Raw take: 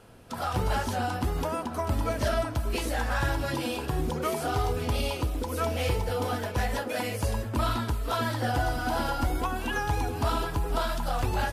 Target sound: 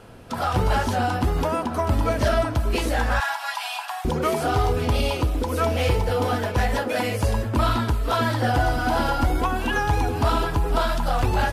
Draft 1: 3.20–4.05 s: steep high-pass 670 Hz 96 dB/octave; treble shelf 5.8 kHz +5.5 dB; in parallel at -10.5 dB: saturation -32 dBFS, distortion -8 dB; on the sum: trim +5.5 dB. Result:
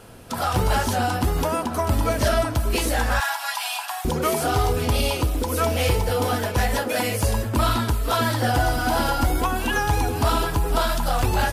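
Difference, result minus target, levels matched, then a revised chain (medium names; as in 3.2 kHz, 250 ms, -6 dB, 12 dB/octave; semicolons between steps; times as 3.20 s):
8 kHz band +7.0 dB
3.20–4.05 s: steep high-pass 670 Hz 96 dB/octave; treble shelf 5.8 kHz -6 dB; in parallel at -10.5 dB: saturation -32 dBFS, distortion -8 dB; on the sum: trim +5.5 dB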